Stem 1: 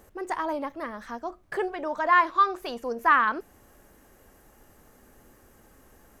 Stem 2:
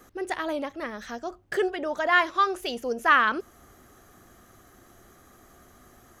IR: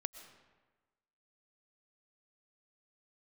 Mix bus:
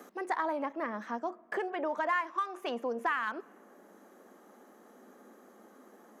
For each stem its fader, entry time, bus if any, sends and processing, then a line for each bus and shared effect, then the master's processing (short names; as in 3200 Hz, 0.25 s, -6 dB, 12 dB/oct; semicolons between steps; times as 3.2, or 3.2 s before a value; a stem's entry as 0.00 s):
+1.0 dB, 0.00 s, send -13.5 dB, Wiener smoothing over 9 samples; low-pass opened by the level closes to 1400 Hz, open at -21 dBFS; compressor 8:1, threshold -30 dBFS, peak gain reduction 15 dB
-7.0 dB, 0.00 s, polarity flipped, no send, three-band squash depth 40%; auto duck -9 dB, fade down 0.60 s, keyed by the first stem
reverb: on, RT60 1.3 s, pre-delay 80 ms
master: elliptic high-pass 200 Hz, stop band 40 dB